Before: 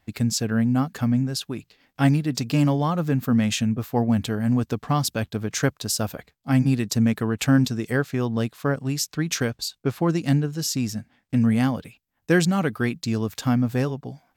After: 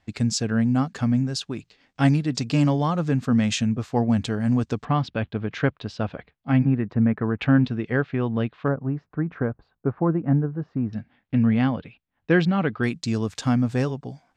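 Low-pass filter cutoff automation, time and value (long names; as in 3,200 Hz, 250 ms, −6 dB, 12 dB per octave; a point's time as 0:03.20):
low-pass filter 24 dB per octave
7,900 Hz
from 0:04.85 3,300 Hz
from 0:06.65 1,900 Hz
from 0:07.41 3,100 Hz
from 0:08.68 1,400 Hz
from 0:10.93 3,600 Hz
from 0:12.83 8,900 Hz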